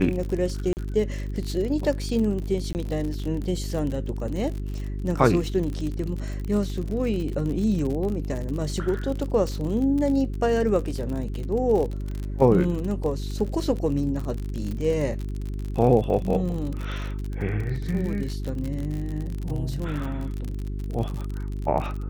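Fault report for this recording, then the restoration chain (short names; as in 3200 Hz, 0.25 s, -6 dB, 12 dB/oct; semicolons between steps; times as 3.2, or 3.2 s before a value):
crackle 50/s -29 dBFS
hum 50 Hz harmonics 8 -30 dBFS
0.73–0.77 gap 39 ms
2.73–2.75 gap 19 ms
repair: de-click; de-hum 50 Hz, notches 8; interpolate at 0.73, 39 ms; interpolate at 2.73, 19 ms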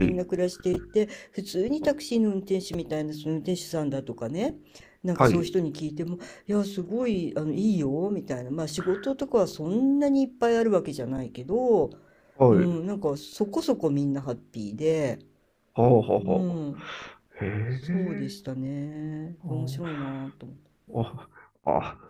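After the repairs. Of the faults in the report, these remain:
none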